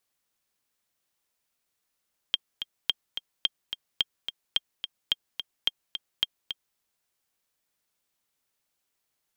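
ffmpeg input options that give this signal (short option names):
-f lavfi -i "aevalsrc='pow(10,(-9.5-9*gte(mod(t,2*60/216),60/216))/20)*sin(2*PI*3200*mod(t,60/216))*exp(-6.91*mod(t,60/216)/0.03)':d=4.44:s=44100"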